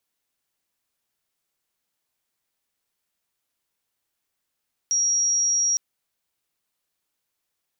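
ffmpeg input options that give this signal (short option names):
-f lavfi -i "sine=f=5670:d=0.86:r=44100,volume=-0.44dB"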